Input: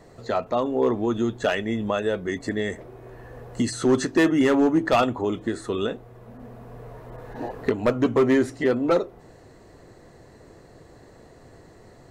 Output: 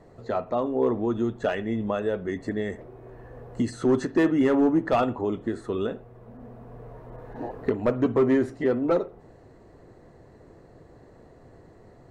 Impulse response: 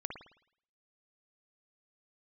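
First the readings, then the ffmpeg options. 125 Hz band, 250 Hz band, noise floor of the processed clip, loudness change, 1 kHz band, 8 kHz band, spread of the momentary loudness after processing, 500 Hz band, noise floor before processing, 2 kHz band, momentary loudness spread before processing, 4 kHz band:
−1.5 dB, −1.5 dB, −52 dBFS, −2.0 dB, −3.0 dB, below −10 dB, 22 LU, −2.0 dB, −50 dBFS, −6.0 dB, 21 LU, −9.5 dB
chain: -filter_complex "[0:a]highshelf=frequency=2200:gain=-11.5,asplit=2[link_01][link_02];[1:a]atrim=start_sample=2205,atrim=end_sample=6174[link_03];[link_02][link_03]afir=irnorm=-1:irlink=0,volume=-12dB[link_04];[link_01][link_04]amix=inputs=2:normalize=0,volume=-3dB"

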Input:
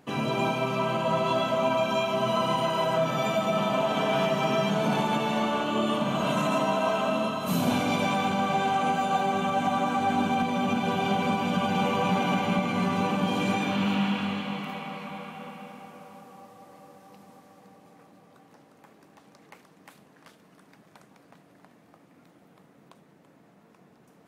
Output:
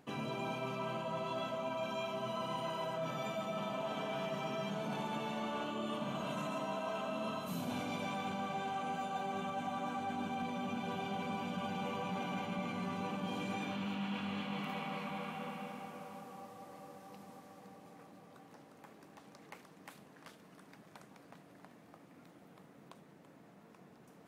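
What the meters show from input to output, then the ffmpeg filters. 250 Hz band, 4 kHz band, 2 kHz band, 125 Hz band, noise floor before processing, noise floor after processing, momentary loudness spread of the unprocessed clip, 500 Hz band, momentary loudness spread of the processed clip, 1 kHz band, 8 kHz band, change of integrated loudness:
−13.0 dB, −13.0 dB, −12.5 dB, −13.0 dB, −58 dBFS, −60 dBFS, 5 LU, −13.0 dB, 19 LU, −13.0 dB, −13.0 dB, −13.5 dB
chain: -af "areverse,acompressor=threshold=-35dB:ratio=6,areverse,volume=-2dB"

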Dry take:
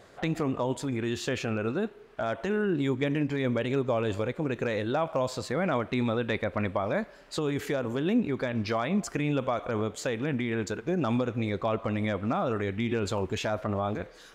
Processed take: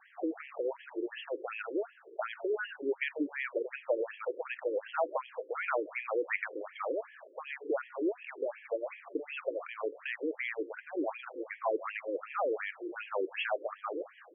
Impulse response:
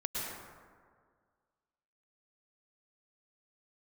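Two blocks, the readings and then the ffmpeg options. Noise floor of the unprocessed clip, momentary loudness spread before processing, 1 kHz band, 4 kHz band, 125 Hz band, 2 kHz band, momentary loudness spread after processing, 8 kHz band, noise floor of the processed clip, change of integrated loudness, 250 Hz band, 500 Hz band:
−51 dBFS, 4 LU, −5.5 dB, −9.5 dB, below −40 dB, −2.5 dB, 6 LU, below −35 dB, −58 dBFS, −6.5 dB, −12.0 dB, −4.5 dB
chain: -filter_complex "[0:a]lowpass=frequency=3100:width_type=q:width=1.6,asplit=2[link_01][link_02];[1:a]atrim=start_sample=2205,adelay=32[link_03];[link_02][link_03]afir=irnorm=-1:irlink=0,volume=-22.5dB[link_04];[link_01][link_04]amix=inputs=2:normalize=0,afftfilt=real='re*between(b*sr/1024,370*pow(2400/370,0.5+0.5*sin(2*PI*2.7*pts/sr))/1.41,370*pow(2400/370,0.5+0.5*sin(2*PI*2.7*pts/sr))*1.41)':imag='im*between(b*sr/1024,370*pow(2400/370,0.5+0.5*sin(2*PI*2.7*pts/sr))/1.41,370*pow(2400/370,0.5+0.5*sin(2*PI*2.7*pts/sr))*1.41)':win_size=1024:overlap=0.75"

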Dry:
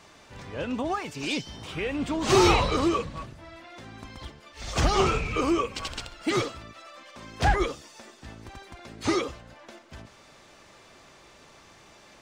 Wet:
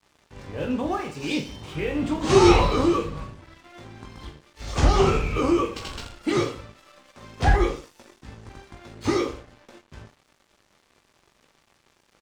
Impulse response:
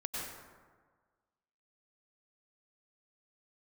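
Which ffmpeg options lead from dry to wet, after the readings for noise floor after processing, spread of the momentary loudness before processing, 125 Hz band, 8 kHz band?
−66 dBFS, 22 LU, +5.0 dB, −1.0 dB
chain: -filter_complex "[0:a]tiltshelf=frequency=970:gain=3,aresample=22050,aresample=44100,bandreject=frequency=660:width=12,asplit=2[link_01][link_02];[link_02]aecho=0:1:20|46|79.8|123.7|180.9:0.631|0.398|0.251|0.158|0.1[link_03];[link_01][link_03]amix=inputs=2:normalize=0,aeval=exprs='sgn(val(0))*max(abs(val(0))-0.00398,0)':channel_layout=same"

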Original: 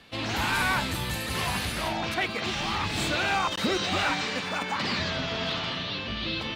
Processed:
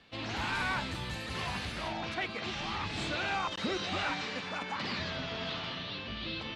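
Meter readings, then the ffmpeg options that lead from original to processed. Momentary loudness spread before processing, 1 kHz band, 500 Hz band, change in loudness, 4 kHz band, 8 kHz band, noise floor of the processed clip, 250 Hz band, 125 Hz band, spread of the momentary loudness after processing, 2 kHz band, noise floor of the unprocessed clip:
5 LU, −7.0 dB, −7.0 dB, −7.5 dB, −7.5 dB, −12.0 dB, −41 dBFS, −7.0 dB, −7.0 dB, 5 LU, −7.0 dB, −34 dBFS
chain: -af "lowpass=6000,volume=-7dB"

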